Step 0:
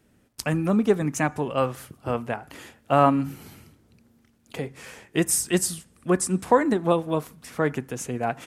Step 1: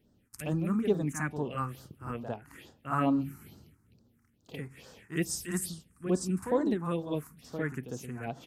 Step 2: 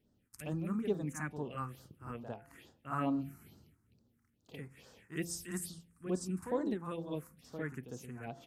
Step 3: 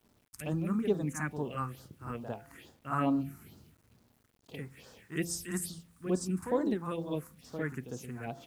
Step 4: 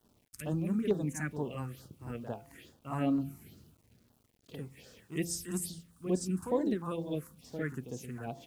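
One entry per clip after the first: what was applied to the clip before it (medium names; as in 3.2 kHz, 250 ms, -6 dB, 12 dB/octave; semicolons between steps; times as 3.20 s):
reverse echo 54 ms -7.5 dB; phase shifter stages 4, 2.3 Hz, lowest notch 530–2300 Hz; trim -6.5 dB
de-hum 171.4 Hz, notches 5; trim -6.5 dB
word length cut 12-bit, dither none; trim +4.5 dB
LFO notch saw down 2.2 Hz 720–2500 Hz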